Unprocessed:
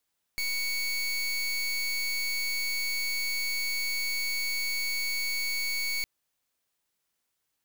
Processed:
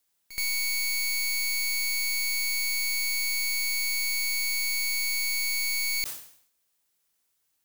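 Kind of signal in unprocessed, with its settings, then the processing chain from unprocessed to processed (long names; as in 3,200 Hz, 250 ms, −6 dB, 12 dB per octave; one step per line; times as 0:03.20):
pulse wave 2,230 Hz, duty 26% −30 dBFS 5.66 s
high-shelf EQ 5,200 Hz +7 dB
echo ahead of the sound 75 ms −15 dB
level that may fall only so fast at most 95 dB per second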